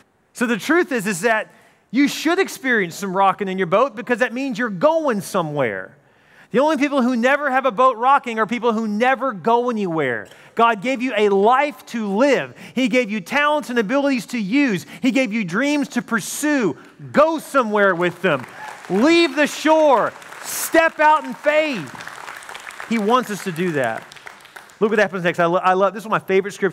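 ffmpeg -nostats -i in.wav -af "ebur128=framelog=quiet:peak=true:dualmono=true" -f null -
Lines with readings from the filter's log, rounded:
Integrated loudness:
  I:         -15.6 LUFS
  Threshold: -26.0 LUFS
Loudness range:
  LRA:         3.3 LU
  Threshold: -36.0 LUFS
  LRA low:   -17.5 LUFS
  LRA high:  -14.1 LUFS
True peak:
  Peak:       -4.2 dBFS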